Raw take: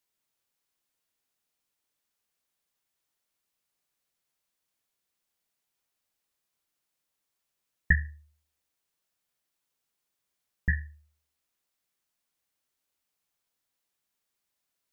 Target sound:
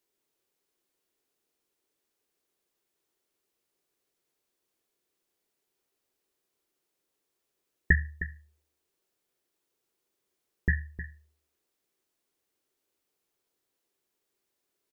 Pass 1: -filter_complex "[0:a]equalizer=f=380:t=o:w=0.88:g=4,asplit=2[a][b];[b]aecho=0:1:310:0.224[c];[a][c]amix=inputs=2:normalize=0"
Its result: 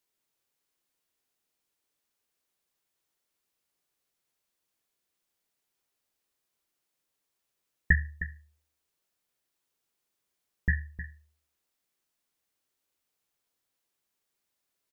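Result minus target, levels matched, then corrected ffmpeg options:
500 Hz band -8.0 dB
-filter_complex "[0:a]equalizer=f=380:t=o:w=0.88:g=14,asplit=2[a][b];[b]aecho=0:1:310:0.224[c];[a][c]amix=inputs=2:normalize=0"

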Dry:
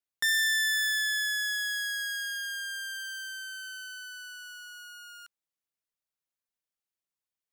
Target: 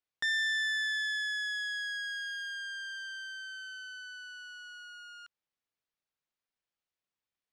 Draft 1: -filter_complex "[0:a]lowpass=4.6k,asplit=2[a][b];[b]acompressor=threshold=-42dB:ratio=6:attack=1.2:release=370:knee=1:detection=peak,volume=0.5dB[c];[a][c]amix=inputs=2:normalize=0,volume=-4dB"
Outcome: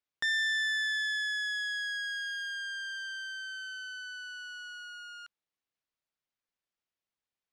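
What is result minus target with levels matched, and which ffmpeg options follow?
compressor: peak gain reduction -9.5 dB
-filter_complex "[0:a]lowpass=4.6k,asplit=2[a][b];[b]acompressor=threshold=-53.5dB:ratio=6:attack=1.2:release=370:knee=1:detection=peak,volume=0.5dB[c];[a][c]amix=inputs=2:normalize=0,volume=-4dB"

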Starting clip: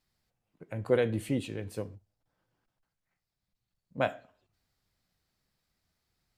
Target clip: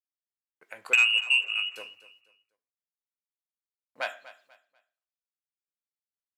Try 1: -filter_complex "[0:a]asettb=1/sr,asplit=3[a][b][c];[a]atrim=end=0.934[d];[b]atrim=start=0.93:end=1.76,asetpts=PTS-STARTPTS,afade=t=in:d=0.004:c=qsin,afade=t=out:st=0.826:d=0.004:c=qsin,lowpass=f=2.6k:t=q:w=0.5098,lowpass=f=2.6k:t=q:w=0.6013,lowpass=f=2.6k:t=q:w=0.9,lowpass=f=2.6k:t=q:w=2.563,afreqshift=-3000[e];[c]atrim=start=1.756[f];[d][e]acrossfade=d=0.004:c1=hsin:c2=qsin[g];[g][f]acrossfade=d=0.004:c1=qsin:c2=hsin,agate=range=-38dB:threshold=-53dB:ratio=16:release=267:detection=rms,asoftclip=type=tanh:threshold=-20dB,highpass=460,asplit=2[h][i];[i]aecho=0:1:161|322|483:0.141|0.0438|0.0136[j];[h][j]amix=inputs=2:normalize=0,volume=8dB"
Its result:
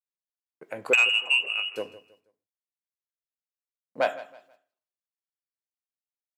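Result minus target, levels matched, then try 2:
500 Hz band +12.5 dB; echo 83 ms early
-filter_complex "[0:a]asettb=1/sr,asplit=3[a][b][c];[a]atrim=end=0.934[d];[b]atrim=start=0.93:end=1.76,asetpts=PTS-STARTPTS,afade=t=in:d=0.004:c=qsin,afade=t=out:st=0.826:d=0.004:c=qsin,lowpass=f=2.6k:t=q:w=0.5098,lowpass=f=2.6k:t=q:w=0.6013,lowpass=f=2.6k:t=q:w=0.9,lowpass=f=2.6k:t=q:w=2.563,afreqshift=-3000[e];[c]atrim=start=1.756[f];[d][e]acrossfade=d=0.004:c1=hsin:c2=qsin[g];[g][f]acrossfade=d=0.004:c1=qsin:c2=hsin,agate=range=-38dB:threshold=-53dB:ratio=16:release=267:detection=rms,asoftclip=type=tanh:threshold=-20dB,highpass=1.3k,asplit=2[h][i];[i]aecho=0:1:244|488|732:0.141|0.0438|0.0136[j];[h][j]amix=inputs=2:normalize=0,volume=8dB"

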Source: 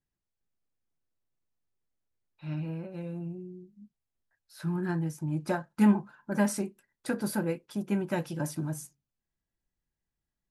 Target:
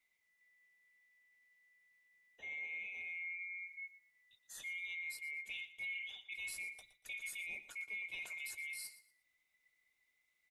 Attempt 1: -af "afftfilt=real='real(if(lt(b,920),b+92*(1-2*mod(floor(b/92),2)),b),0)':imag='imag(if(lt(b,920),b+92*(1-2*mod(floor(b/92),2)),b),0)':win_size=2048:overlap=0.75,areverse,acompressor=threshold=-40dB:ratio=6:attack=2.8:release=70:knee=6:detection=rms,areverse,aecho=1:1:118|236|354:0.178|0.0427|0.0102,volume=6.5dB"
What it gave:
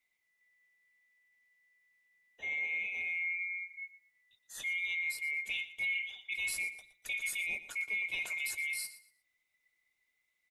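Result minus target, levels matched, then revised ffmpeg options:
compressor: peak gain reduction -9 dB
-af "afftfilt=real='real(if(lt(b,920),b+92*(1-2*mod(floor(b/92),2)),b),0)':imag='imag(if(lt(b,920),b+92*(1-2*mod(floor(b/92),2)),b),0)':win_size=2048:overlap=0.75,areverse,acompressor=threshold=-50.5dB:ratio=6:attack=2.8:release=70:knee=6:detection=rms,areverse,aecho=1:1:118|236|354:0.178|0.0427|0.0102,volume=6.5dB"

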